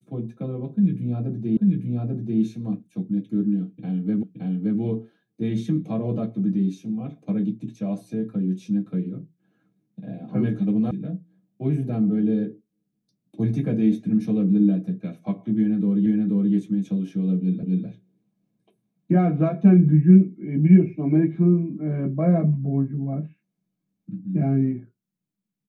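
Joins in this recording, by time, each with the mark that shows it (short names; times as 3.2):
1.57 repeat of the last 0.84 s
4.23 repeat of the last 0.57 s
10.91 sound cut off
16.06 repeat of the last 0.48 s
17.63 repeat of the last 0.25 s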